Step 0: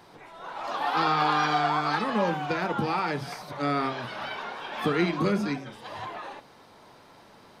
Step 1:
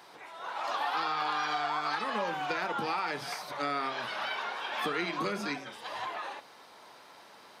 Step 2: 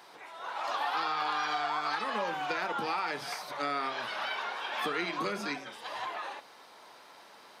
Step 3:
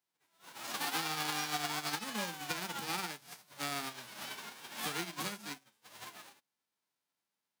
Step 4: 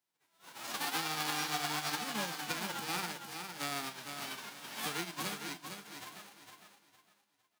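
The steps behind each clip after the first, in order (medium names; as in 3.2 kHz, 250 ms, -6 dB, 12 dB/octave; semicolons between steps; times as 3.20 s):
high-pass 800 Hz 6 dB/octave; compression 6:1, threshold -31 dBFS, peak gain reduction 8.5 dB; trim +2.5 dB
bass shelf 150 Hz -7.5 dB
formants flattened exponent 0.3; upward expansion 2.5:1, over -52 dBFS; trim -2 dB
feedback delay 458 ms, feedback 29%, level -7 dB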